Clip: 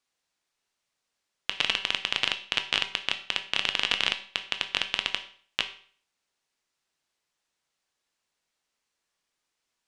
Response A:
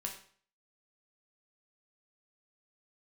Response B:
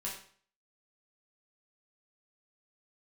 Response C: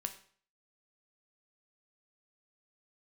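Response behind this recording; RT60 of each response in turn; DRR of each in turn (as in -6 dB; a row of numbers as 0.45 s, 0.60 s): C; 0.50 s, 0.50 s, 0.50 s; 0.5 dB, -5.0 dB, 6.5 dB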